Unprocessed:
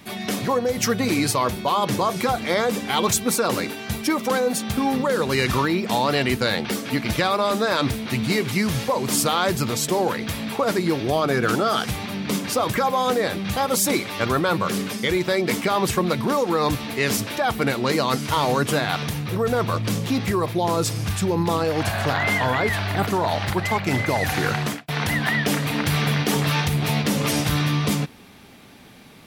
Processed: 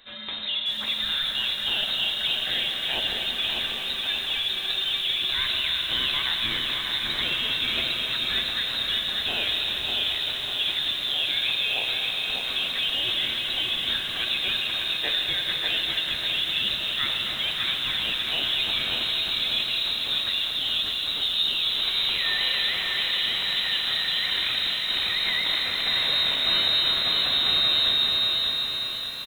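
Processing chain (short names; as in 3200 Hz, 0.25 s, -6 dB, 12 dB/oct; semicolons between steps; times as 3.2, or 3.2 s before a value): speakerphone echo 0.26 s, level -10 dB; reverb RT60 5.5 s, pre-delay 36 ms, DRR 2 dB; inverted band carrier 3900 Hz; lo-fi delay 0.593 s, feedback 55%, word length 6-bit, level -4 dB; gain -8 dB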